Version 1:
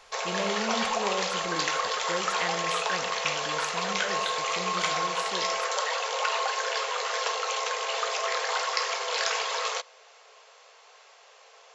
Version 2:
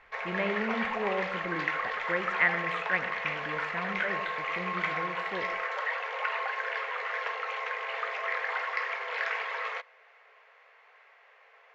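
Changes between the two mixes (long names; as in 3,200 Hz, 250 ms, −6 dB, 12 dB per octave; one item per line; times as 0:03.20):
background −7.5 dB
master: add low-pass with resonance 2,000 Hz, resonance Q 3.4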